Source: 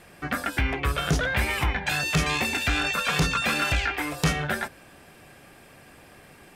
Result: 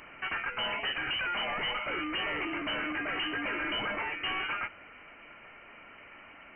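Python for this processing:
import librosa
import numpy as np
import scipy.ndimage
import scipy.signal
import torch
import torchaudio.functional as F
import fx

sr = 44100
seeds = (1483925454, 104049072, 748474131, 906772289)

p1 = fx.delta_mod(x, sr, bps=64000, step_db=-44.0)
p2 = fx.low_shelf_res(p1, sr, hz=510.0, db=-8.5, q=1.5)
p3 = fx.rider(p2, sr, range_db=10, speed_s=0.5)
p4 = p2 + (p3 * librosa.db_to_amplitude(0.0))
p5 = np.clip(10.0 ** (23.5 / 20.0) * p4, -1.0, 1.0) / 10.0 ** (23.5 / 20.0)
p6 = fx.freq_invert(p5, sr, carrier_hz=3000)
y = p6 * librosa.db_to_amplitude(-6.5)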